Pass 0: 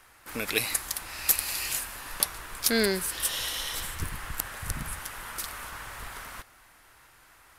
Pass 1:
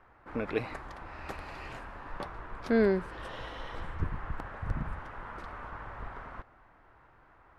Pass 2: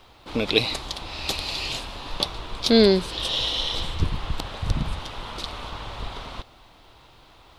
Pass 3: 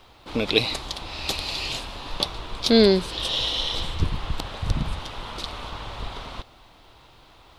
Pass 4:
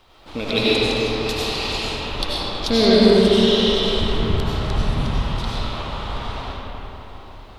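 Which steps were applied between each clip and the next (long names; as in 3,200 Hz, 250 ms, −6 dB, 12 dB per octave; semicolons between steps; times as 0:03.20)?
low-pass filter 1,100 Hz 12 dB per octave; level +2 dB
high shelf with overshoot 2,500 Hz +14 dB, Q 3; level +9 dB
no processing that can be heard
comb and all-pass reverb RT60 4.2 s, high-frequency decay 0.45×, pre-delay 55 ms, DRR −8.5 dB; level −3 dB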